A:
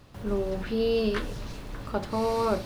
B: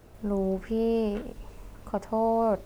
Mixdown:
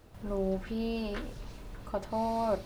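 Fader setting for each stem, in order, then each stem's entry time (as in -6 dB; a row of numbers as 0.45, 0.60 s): -9.5, -5.0 dB; 0.00, 0.00 s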